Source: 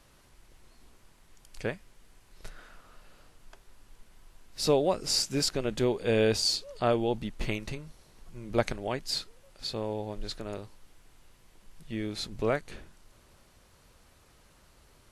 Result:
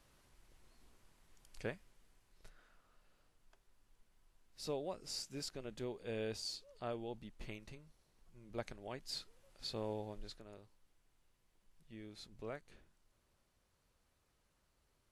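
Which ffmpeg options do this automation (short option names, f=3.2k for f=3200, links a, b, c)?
-af "afade=t=out:st=1.62:d=0.93:silence=0.421697,afade=t=in:st=8.72:d=1.18:silence=0.354813,afade=t=out:st=9.9:d=0.54:silence=0.298538"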